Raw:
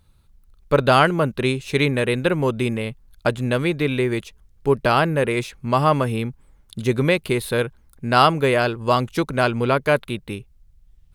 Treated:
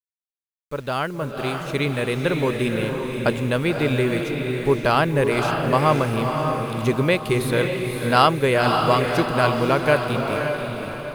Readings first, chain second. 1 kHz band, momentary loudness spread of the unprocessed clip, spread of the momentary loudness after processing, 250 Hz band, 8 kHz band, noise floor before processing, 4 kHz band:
-0.5 dB, 12 LU, 8 LU, 0.0 dB, +0.5 dB, -55 dBFS, -0.5 dB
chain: opening faded in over 2.77 s; requantised 8-bit, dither none; diffused feedback echo 0.545 s, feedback 46%, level -4 dB; gain -1 dB

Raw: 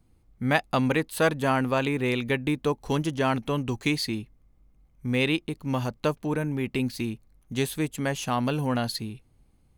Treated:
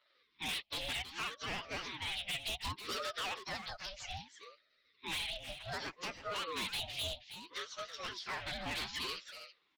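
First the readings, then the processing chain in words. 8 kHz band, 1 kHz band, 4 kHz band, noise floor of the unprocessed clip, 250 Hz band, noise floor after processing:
-7.0 dB, -12.5 dB, -2.5 dB, -63 dBFS, -25.5 dB, -75 dBFS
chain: inharmonic rescaling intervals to 114%; Chebyshev band-pass 340–4700 Hz, order 4; resonant high shelf 1900 Hz +13 dB, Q 1.5; in parallel at -3 dB: limiter -15 dBFS, peak gain reduction 9 dB; on the sum: compressor 12:1, threshold -29 dBFS, peak gain reduction 18 dB; phaser stages 4, 0.47 Hz, lowest notch 500–1400 Hz; vibrato 13 Hz 71 cents; overloaded stage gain 36 dB; on a send: echo 0.323 s -10.5 dB; on the sum: ring modulator with a swept carrier 610 Hz, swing 55%, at 0.64 Hz; gain +3 dB

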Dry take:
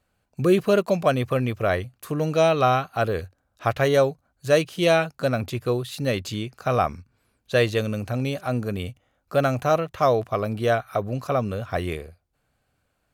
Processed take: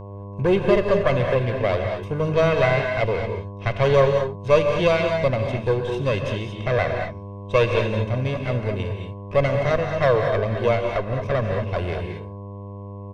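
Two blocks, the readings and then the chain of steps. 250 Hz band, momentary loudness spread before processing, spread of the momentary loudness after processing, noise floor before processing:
-0.5 dB, 9 LU, 11 LU, -73 dBFS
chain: minimum comb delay 0.34 ms; LPF 3500 Hz 12 dB/oct; in parallel at -9 dB: one-sided clip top -16 dBFS; on the sum: buzz 100 Hz, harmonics 11, -36 dBFS -5 dB/oct; comb 1.9 ms, depth 53%; non-linear reverb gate 0.25 s rising, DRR 3.5 dB; gain -2 dB

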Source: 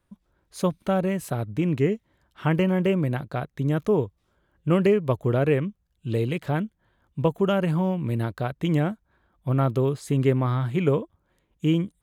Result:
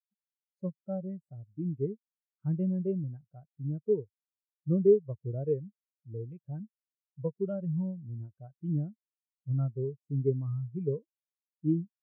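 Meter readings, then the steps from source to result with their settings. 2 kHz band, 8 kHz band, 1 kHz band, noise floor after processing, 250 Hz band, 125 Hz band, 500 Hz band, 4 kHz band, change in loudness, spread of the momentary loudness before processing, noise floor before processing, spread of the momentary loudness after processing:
under -35 dB, n/a, under -25 dB, under -85 dBFS, -9.5 dB, -8.5 dB, -7.0 dB, under -40 dB, -8.0 dB, 11 LU, -72 dBFS, 13 LU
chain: spectral expander 2.5:1; gain -3 dB

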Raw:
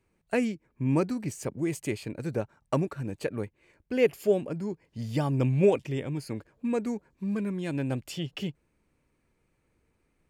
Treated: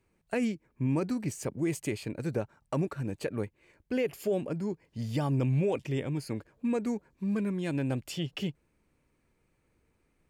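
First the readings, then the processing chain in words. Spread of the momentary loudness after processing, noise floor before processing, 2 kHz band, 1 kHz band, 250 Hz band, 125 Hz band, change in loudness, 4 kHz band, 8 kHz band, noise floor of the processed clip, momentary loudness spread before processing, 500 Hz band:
7 LU, -74 dBFS, -3.0 dB, -3.0 dB, -1.5 dB, -1.0 dB, -2.5 dB, -0.5 dB, -0.5 dB, -74 dBFS, 11 LU, -5.0 dB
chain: limiter -21 dBFS, peak gain reduction 9 dB

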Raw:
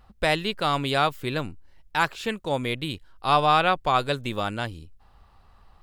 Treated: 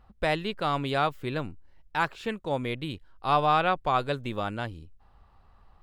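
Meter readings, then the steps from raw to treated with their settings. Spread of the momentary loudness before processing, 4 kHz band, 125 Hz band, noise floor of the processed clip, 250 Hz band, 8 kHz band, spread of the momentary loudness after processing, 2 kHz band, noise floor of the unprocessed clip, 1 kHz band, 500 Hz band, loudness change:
11 LU, -7.5 dB, -2.5 dB, -59 dBFS, -2.5 dB, under -10 dB, 12 LU, -4.5 dB, -56 dBFS, -3.0 dB, -3.0 dB, -3.5 dB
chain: high shelf 3400 Hz -9.5 dB; gain -2.5 dB

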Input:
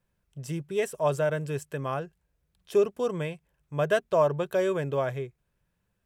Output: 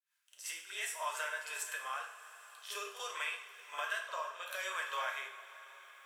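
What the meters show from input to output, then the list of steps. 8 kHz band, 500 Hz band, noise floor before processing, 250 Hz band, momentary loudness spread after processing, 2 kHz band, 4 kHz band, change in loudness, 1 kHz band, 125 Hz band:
+2.5 dB, -23.0 dB, -77 dBFS, under -35 dB, 14 LU, -0.5 dB, +2.0 dB, -11.0 dB, -6.5 dB, under -40 dB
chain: opening faded in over 1.27 s; HPF 1100 Hz 24 dB/oct; compressor 4:1, threshold -49 dBFS, peak gain reduction 17 dB; rotary speaker horn 5.5 Hz, later 0.65 Hz, at 1.25; on a send: reverse echo 50 ms -10 dB; on the sum: two-slope reverb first 0.54 s, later 4.3 s, from -17 dB, DRR 0.5 dB; mismatched tape noise reduction encoder only; gain +12 dB

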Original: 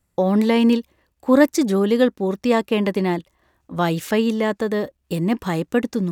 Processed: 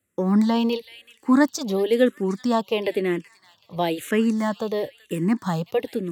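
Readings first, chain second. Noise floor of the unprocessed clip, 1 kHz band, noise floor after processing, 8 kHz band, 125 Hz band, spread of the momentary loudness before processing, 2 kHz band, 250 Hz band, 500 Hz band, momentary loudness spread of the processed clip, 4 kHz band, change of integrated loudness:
-70 dBFS, -2.5 dB, -64 dBFS, -2.0 dB, -4.0 dB, 8 LU, -3.5 dB, -3.0 dB, -3.5 dB, 9 LU, -2.0 dB, -3.0 dB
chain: HPF 97 Hz 24 dB/oct; thin delay 0.38 s, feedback 40%, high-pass 2700 Hz, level -11.5 dB; endless phaser -1 Hz

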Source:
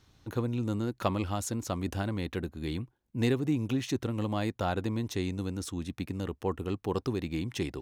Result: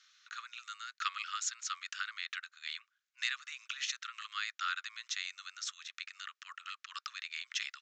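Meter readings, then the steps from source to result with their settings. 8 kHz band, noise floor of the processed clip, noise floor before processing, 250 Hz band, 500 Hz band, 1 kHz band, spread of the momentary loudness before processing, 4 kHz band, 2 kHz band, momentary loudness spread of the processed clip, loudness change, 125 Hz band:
+2.0 dB, under -85 dBFS, -71 dBFS, under -40 dB, under -40 dB, -4.5 dB, 7 LU, +4.0 dB, +4.0 dB, 10 LU, -7.0 dB, under -40 dB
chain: steep high-pass 1200 Hz 96 dB/oct; downsampling 16000 Hz; gain +4 dB

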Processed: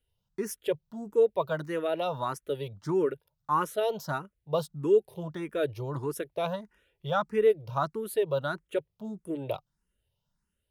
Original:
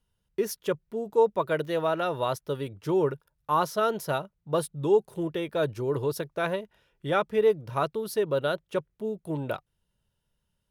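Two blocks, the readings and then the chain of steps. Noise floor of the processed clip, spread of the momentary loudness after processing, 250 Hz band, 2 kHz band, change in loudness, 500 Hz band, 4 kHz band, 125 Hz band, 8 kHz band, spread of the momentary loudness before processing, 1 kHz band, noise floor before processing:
-82 dBFS, 12 LU, -2.5 dB, -4.0 dB, -2.0 dB, -2.0 dB, -3.5 dB, -2.5 dB, -3.0 dB, 9 LU, -3.0 dB, -79 dBFS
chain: endless phaser +1.6 Hz

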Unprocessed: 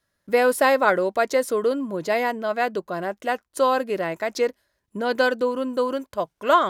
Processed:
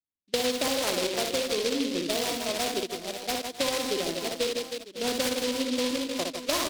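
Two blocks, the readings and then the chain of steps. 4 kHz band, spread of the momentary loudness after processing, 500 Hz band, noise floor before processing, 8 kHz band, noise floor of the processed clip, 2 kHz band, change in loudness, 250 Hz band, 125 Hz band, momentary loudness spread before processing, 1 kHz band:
+7.0 dB, 5 LU, -8.0 dB, -76 dBFS, +7.0 dB, -55 dBFS, -8.5 dB, -5.5 dB, -2.5 dB, -4.0 dB, 10 LU, -12.0 dB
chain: in parallel at -7.5 dB: bit-crush 5-bit; on the sum: echo 71 ms -17.5 dB; low-pass opened by the level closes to 480 Hz, open at -12 dBFS; bell 300 Hz +9 dB 0.94 oct; gate -19 dBFS, range -21 dB; on a send: reverse bouncing-ball echo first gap 60 ms, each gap 1.6×, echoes 5; on the sum: compressor 4:1, threshold -17 dBFS, peak gain reduction 9.5 dB; noise-modulated delay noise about 3500 Hz, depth 0.18 ms; gain -8.5 dB

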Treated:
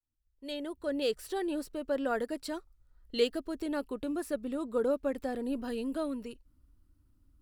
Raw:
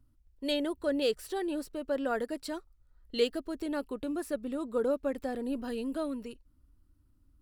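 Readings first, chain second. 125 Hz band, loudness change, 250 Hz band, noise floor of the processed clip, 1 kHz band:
n/a, -0.5 dB, -0.5 dB, -73 dBFS, 0.0 dB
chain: opening faded in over 1.32 s

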